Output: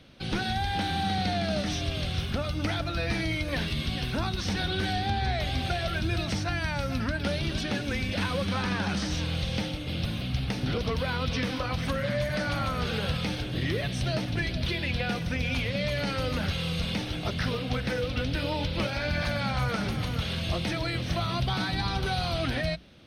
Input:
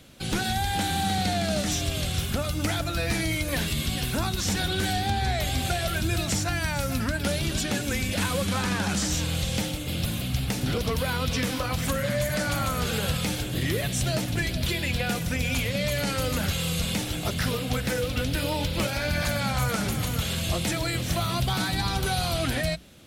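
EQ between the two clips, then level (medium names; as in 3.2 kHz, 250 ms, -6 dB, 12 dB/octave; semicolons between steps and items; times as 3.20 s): Savitzky-Golay filter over 15 samples; -2.0 dB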